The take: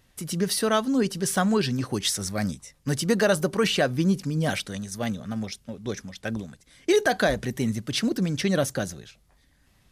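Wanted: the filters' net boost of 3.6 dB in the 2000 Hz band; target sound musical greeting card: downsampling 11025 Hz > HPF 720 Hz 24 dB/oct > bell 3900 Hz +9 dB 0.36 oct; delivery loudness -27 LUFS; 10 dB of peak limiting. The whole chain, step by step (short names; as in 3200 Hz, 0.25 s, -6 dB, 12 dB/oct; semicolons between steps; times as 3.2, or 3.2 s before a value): bell 2000 Hz +4.5 dB; limiter -19 dBFS; downsampling 11025 Hz; HPF 720 Hz 24 dB/oct; bell 3900 Hz +9 dB 0.36 oct; gain +5.5 dB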